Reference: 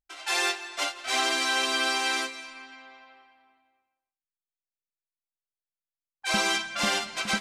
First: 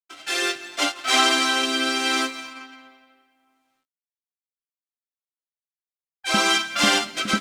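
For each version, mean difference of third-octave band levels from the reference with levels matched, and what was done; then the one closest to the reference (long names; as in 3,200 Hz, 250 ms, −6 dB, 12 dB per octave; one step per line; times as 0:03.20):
3.0 dB: mu-law and A-law mismatch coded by A
low-shelf EQ 64 Hz −9.5 dB
hollow resonant body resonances 280/1,300/3,200 Hz, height 10 dB, ringing for 60 ms
rotating-speaker cabinet horn 0.7 Hz
level +8.5 dB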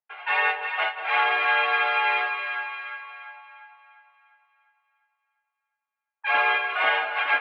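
12.5 dB: on a send: echo with a time of its own for lows and highs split 780 Hz, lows 188 ms, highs 350 ms, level −8 dB
on the sum: single-sideband voice off tune +67 Hz 460–2,600 Hz
one half of a high-frequency compander decoder only
level +6.5 dB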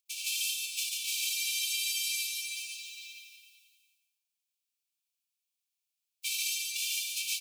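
21.5 dB: spectral envelope flattened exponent 0.3
downward compressor 6 to 1, threshold −37 dBFS, peak gain reduction 15 dB
linear-phase brick-wall high-pass 2,200 Hz
loudspeakers that aren't time-aligned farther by 20 metres −10 dB, 49 metres −2 dB
level +5.5 dB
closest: first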